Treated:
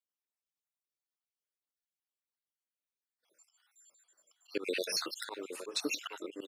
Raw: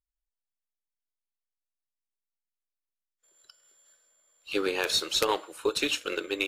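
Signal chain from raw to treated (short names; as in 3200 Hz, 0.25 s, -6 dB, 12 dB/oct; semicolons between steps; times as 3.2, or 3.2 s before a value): random spectral dropouts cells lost 57%; in parallel at -1 dB: limiter -26 dBFS, peak gain reduction 11 dB; on the sum: HPF 180 Hz 24 dB/oct; outdoor echo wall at 140 m, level -10 dB; auto swell 0.13 s; gain -5 dB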